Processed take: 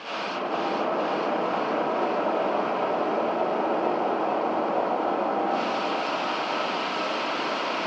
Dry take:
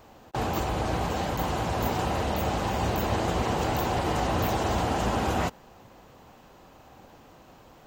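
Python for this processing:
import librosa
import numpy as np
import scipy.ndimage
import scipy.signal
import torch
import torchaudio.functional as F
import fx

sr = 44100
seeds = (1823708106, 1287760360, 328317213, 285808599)

p1 = fx.tracing_dist(x, sr, depth_ms=0.42)
p2 = fx.peak_eq(p1, sr, hz=460.0, db=11.0, octaves=2.6)
p3 = fx.over_compress(p2, sr, threshold_db=-37.0, ratio=-1.0)
p4 = 10.0 ** (-39.0 / 20.0) * (np.abs((p3 / 10.0 ** (-39.0 / 20.0) + 3.0) % 4.0 - 2.0) - 1.0)
p5 = fx.cabinet(p4, sr, low_hz=200.0, low_slope=24, high_hz=4300.0, hz=(970.0, 1900.0, 3700.0), db=(3, -10, -8))
p6 = p5 + fx.echo_thinned(p5, sr, ms=456, feedback_pct=73, hz=390.0, wet_db=-4, dry=0)
p7 = fx.rev_freeverb(p6, sr, rt60_s=0.96, hf_ratio=0.3, predelay_ms=25, drr_db=-9.0)
y = F.gain(torch.from_numpy(p7), 7.0).numpy()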